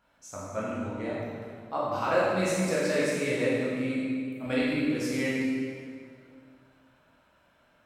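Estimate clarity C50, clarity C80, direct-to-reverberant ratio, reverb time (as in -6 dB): -3.0 dB, -0.5 dB, -8.0 dB, 2.1 s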